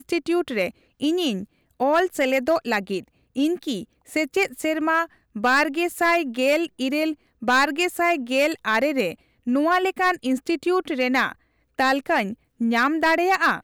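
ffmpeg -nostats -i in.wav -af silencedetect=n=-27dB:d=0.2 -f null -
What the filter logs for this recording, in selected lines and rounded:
silence_start: 0.69
silence_end: 1.02 | silence_duration: 0.33
silence_start: 1.43
silence_end: 1.80 | silence_duration: 0.37
silence_start: 3.00
silence_end: 3.36 | silence_duration: 0.37
silence_start: 3.83
silence_end: 4.13 | silence_duration: 0.30
silence_start: 5.04
silence_end: 5.36 | silence_duration: 0.32
silence_start: 7.13
silence_end: 7.43 | silence_duration: 0.30
silence_start: 9.12
silence_end: 9.47 | silence_duration: 0.35
silence_start: 11.32
silence_end: 11.79 | silence_duration: 0.47
silence_start: 12.33
silence_end: 12.61 | silence_duration: 0.28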